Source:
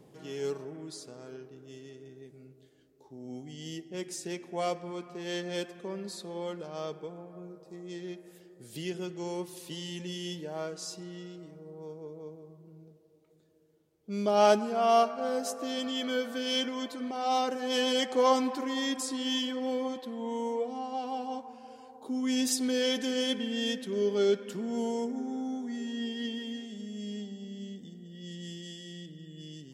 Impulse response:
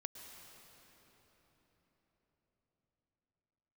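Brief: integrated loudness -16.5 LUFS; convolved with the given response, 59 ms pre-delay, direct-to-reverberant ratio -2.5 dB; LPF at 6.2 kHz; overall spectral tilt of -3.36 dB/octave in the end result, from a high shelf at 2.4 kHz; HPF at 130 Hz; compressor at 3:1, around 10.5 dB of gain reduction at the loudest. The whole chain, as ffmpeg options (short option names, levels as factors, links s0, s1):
-filter_complex "[0:a]highpass=130,lowpass=6200,highshelf=f=2400:g=7.5,acompressor=threshold=0.0251:ratio=3,asplit=2[s0][s1];[1:a]atrim=start_sample=2205,adelay=59[s2];[s1][s2]afir=irnorm=-1:irlink=0,volume=1.88[s3];[s0][s3]amix=inputs=2:normalize=0,volume=5.96"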